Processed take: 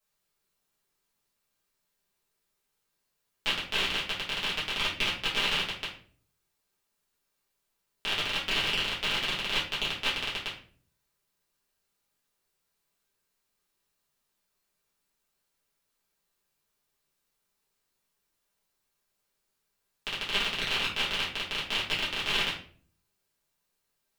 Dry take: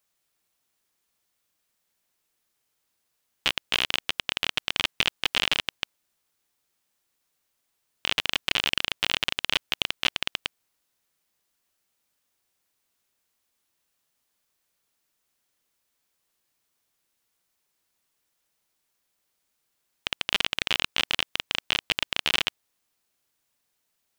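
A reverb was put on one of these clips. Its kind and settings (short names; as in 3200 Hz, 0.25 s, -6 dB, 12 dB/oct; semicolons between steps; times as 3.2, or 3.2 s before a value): shoebox room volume 41 m³, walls mixed, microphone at 1.6 m; gain -11 dB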